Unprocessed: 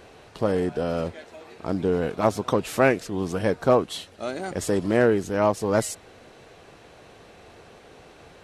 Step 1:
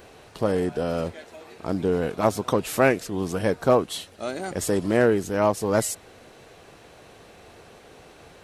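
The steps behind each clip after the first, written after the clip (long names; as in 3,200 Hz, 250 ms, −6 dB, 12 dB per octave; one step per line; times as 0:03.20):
high-shelf EQ 11,000 Hz +11.5 dB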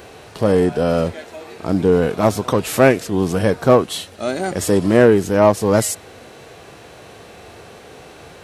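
high-pass filter 48 Hz
harmonic and percussive parts rebalanced percussive −6 dB
in parallel at −3 dB: soft clipping −18 dBFS, distortion −12 dB
on the sum: level +6 dB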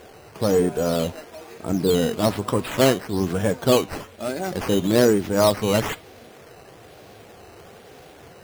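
spectral magnitudes quantised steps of 15 dB
sample-and-hold swept by an LFO 9×, swing 100% 1.1 Hz
flanger 0.64 Hz, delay 4.2 ms, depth 6.3 ms, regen +87%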